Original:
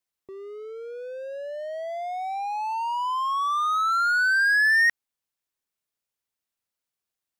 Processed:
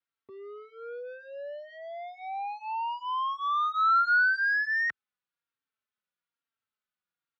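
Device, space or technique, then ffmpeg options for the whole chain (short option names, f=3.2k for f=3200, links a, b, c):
barber-pole flanger into a guitar amplifier: -filter_complex "[0:a]asplit=2[a][b];[b]adelay=3.8,afreqshift=-1.1[c];[a][c]amix=inputs=2:normalize=1,asoftclip=type=tanh:threshold=-27.5dB,highpass=100,equalizer=f=370:t=q:w=4:g=-5,equalizer=f=660:t=q:w=4:g=-6,equalizer=f=1.4k:t=q:w=4:g=9,lowpass=f=3.9k:w=0.5412,lowpass=f=3.9k:w=1.3066"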